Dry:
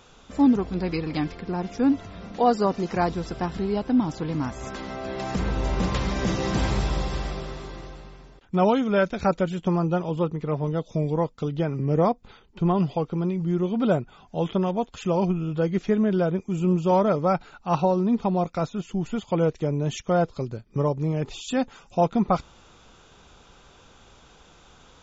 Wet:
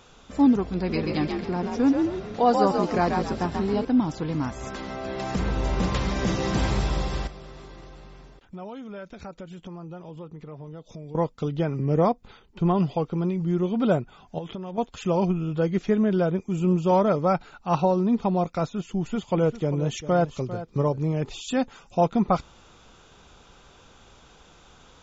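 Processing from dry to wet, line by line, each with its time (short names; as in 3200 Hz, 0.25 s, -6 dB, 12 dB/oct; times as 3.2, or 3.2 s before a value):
0.76–3.85 frequency-shifting echo 0.135 s, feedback 35%, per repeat +48 Hz, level -4 dB
7.27–11.15 compressor 3:1, threshold -41 dBFS
14.38–14.78 compressor 10:1, threshold -30 dBFS
18.71–21.11 echo 0.398 s -13.5 dB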